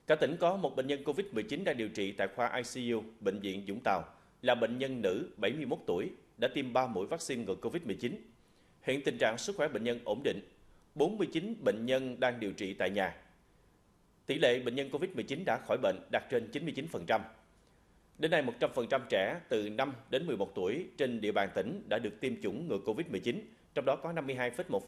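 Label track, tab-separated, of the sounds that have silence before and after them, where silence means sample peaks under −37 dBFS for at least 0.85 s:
14.290000	17.220000	sound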